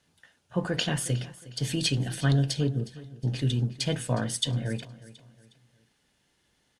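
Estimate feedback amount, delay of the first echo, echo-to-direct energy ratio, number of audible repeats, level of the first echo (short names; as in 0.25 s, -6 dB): 37%, 0.362 s, -17.5 dB, 2, -18.0 dB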